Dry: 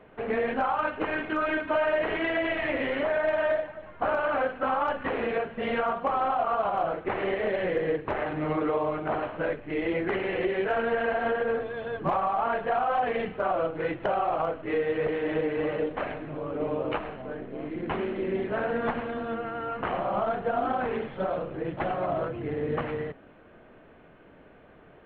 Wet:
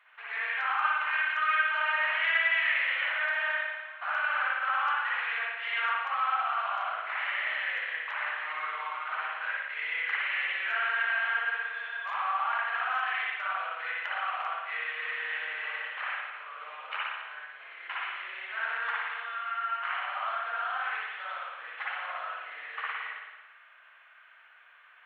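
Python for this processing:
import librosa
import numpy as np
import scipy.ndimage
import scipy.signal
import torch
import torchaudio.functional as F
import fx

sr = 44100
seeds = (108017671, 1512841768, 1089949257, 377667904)

y = scipy.signal.sosfilt(scipy.signal.butter(4, 1300.0, 'highpass', fs=sr, output='sos'), x)
y = fx.rev_spring(y, sr, rt60_s=1.2, pass_ms=(55,), chirp_ms=80, drr_db=-5.5)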